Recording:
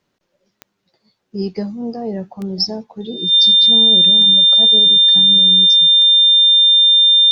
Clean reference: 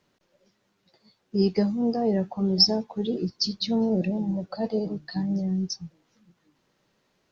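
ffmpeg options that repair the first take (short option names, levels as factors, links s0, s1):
-af "adeclick=t=4,bandreject=f=3600:w=30"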